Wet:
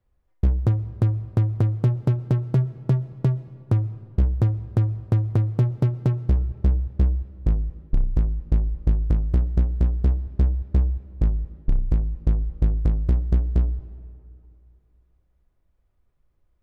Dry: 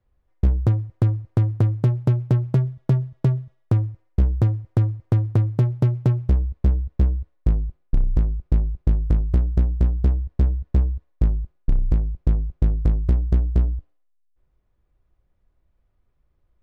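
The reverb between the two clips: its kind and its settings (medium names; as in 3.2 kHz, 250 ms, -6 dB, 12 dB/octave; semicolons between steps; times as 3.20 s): algorithmic reverb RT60 2.7 s, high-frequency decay 0.6×, pre-delay 85 ms, DRR 17 dB; trim -1.5 dB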